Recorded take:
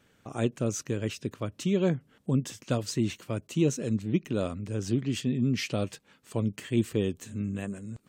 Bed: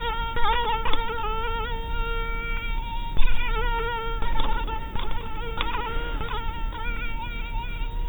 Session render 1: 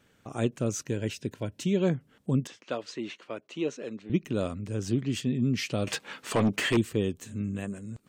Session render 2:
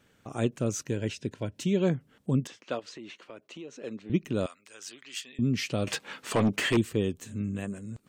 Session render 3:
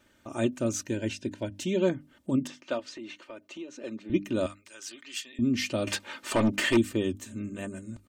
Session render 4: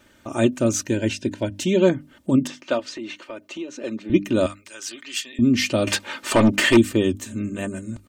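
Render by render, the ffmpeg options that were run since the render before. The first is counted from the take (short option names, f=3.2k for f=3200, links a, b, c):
-filter_complex "[0:a]asettb=1/sr,asplit=3[a][b][c];[a]atrim=end=0.864[d];[b]atrim=start=0.86:end=1.8,asetpts=PTS-STARTPTS,afade=t=in:d=0.004:c=qsin,afade=t=out:st=0.936:d=0.004:c=qsin,asuperstop=centerf=1200:order=8:qfactor=4.7[e];[c]atrim=start=1.796[f];[d][e]acrossfade=d=0.004:c1=hsin:c2=qsin[g];[g][f]acrossfade=d=0.004:c1=qsin:c2=hsin,asettb=1/sr,asplit=3[h][i][j];[h]atrim=end=2.474[k];[i]atrim=start=2.47:end=4.1,asetpts=PTS-STARTPTS,afade=t=in:d=0.004:c=qsin,afade=t=out:st=1.626:d=0.004:c=qsin,highpass=410,lowpass=3.6k[l];[j]atrim=start=4.096[m];[k][l]acrossfade=d=0.004:c1=hsin:c2=qsin[n];[n][m]acrossfade=d=0.004:c1=qsin:c2=hsin,asettb=1/sr,asplit=3[o][p][q];[o]atrim=end=5.874[r];[p]atrim=start=5.87:end=6.77,asetpts=PTS-STARTPTS,afade=t=in:d=0.004:c=qsin,afade=t=out:st=0.896:d=0.004:c=qsin,asplit=2[s][t];[t]highpass=f=720:p=1,volume=27dB,asoftclip=type=tanh:threshold=-15dB[u];[s][u]amix=inputs=2:normalize=0,lowpass=f=3.1k:p=1,volume=-6dB[v];[q]atrim=start=6.766[w];[r][v]acrossfade=d=0.004:c1=hsin:c2=qsin[x];[x][w]acrossfade=d=0.004:c1=qsin:c2=hsin"
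-filter_complex "[0:a]asettb=1/sr,asplit=3[a][b][c];[a]atrim=end=0.954[d];[b]atrim=start=0.95:end=1.56,asetpts=PTS-STARTPTS,afade=t=in:d=0.004:c=qsin,afade=t=out:st=0.606:d=0.004:c=qsin,lowpass=8.6k[e];[c]atrim=start=1.556[f];[d][e]acrossfade=d=0.004:c1=hsin:c2=qsin[g];[g][f]acrossfade=d=0.004:c1=qsin:c2=hsin,asettb=1/sr,asplit=3[h][i][j];[h]atrim=end=2.794[k];[i]atrim=start=2.79:end=3.84,asetpts=PTS-STARTPTS,afade=t=in:d=0.004:c=qsin,afade=t=out:st=1.046:d=0.004:c=qsin,acompressor=threshold=-41dB:ratio=4:attack=3.2:release=140:knee=1:detection=peak[l];[j]atrim=start=3.836[m];[k][l]acrossfade=d=0.004:c1=hsin:c2=qsin[n];[n][m]acrossfade=d=0.004:c1=qsin:c2=hsin,asettb=1/sr,asplit=3[o][p][q];[o]atrim=end=4.464[r];[p]atrim=start=4.46:end=5.39,asetpts=PTS-STARTPTS,afade=t=in:d=0.004:c=qsin,afade=t=out:st=0.926:d=0.004:c=qsin,highpass=1.3k[s];[q]atrim=start=5.386[t];[r][s]acrossfade=d=0.004:c1=hsin:c2=qsin[u];[u][t]acrossfade=d=0.004:c1=qsin:c2=hsin"
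-af "bandreject=f=50:t=h:w=6,bandreject=f=100:t=h:w=6,bandreject=f=150:t=h:w=6,bandreject=f=200:t=h:w=6,bandreject=f=250:t=h:w=6,bandreject=f=300:t=h:w=6,aecho=1:1:3.3:0.67"
-af "volume=8.5dB"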